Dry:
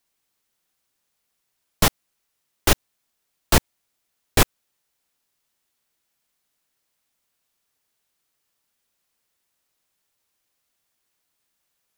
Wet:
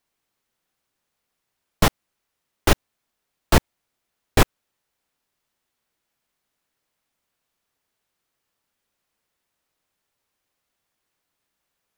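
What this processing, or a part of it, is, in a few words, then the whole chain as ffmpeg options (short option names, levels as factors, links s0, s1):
behind a face mask: -af "highshelf=f=3300:g=-8,volume=1.26"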